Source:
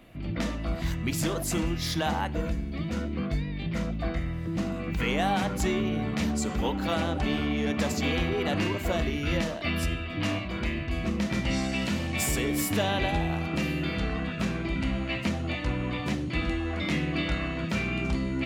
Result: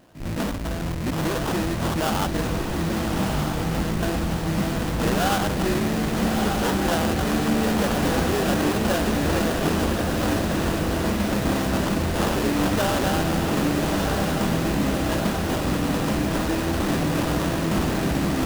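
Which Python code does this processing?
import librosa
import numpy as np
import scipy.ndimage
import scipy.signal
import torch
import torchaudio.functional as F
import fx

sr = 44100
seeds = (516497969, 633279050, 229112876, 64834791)

p1 = fx.highpass(x, sr, hz=71.0, slope=6)
p2 = fx.low_shelf(p1, sr, hz=200.0, db=-5.5)
p3 = fx.schmitt(p2, sr, flips_db=-33.5)
p4 = p2 + F.gain(torch.from_numpy(p3), -1.0).numpy()
p5 = fx.vibrato(p4, sr, rate_hz=1.5, depth_cents=30.0)
p6 = fx.sample_hold(p5, sr, seeds[0], rate_hz=2200.0, jitter_pct=20)
p7 = p6 + fx.echo_diffused(p6, sr, ms=1236, feedback_pct=64, wet_db=-3.5, dry=0)
y = F.gain(torch.from_numpy(p7), 1.5).numpy()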